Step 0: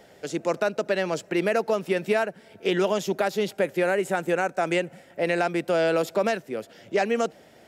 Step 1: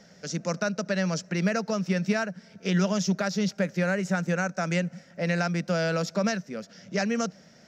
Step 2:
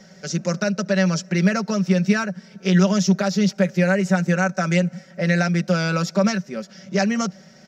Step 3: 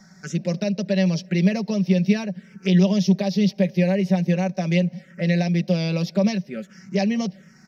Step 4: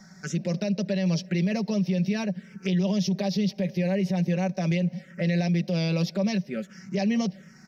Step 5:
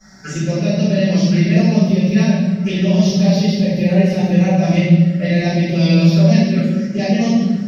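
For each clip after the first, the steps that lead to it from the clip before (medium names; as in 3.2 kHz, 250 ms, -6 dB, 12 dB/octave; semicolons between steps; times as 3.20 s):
FFT filter 120 Hz 0 dB, 180 Hz +13 dB, 350 Hz -8 dB, 570 Hz -1 dB, 810 Hz -6 dB, 1.4 kHz +3 dB, 3.3 kHz -3 dB, 5.8 kHz +13 dB, 8.9 kHz -11 dB; trim -3 dB
comb 5.3 ms, depth 67%; trim +4 dB
touch-sensitive phaser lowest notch 470 Hz, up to 1.4 kHz, full sweep at -20.5 dBFS
peak limiter -18 dBFS, peak gain reduction 10.5 dB
reverberation RT60 1.5 s, pre-delay 3 ms, DRR -17.5 dB; trim -10.5 dB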